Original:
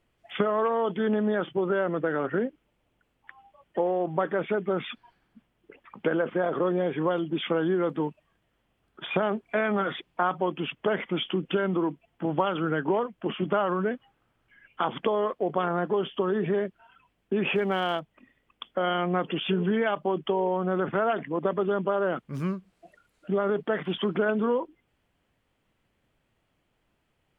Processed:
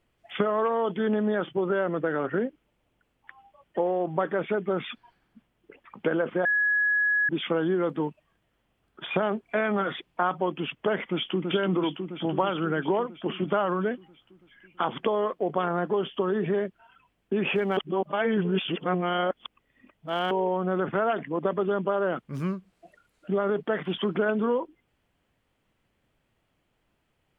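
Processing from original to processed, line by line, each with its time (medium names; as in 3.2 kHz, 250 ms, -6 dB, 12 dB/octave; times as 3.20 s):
6.45–7.29 s: bleep 1.68 kHz -20.5 dBFS
11.08–11.50 s: echo throw 330 ms, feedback 70%, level -3.5 dB
17.77–20.31 s: reverse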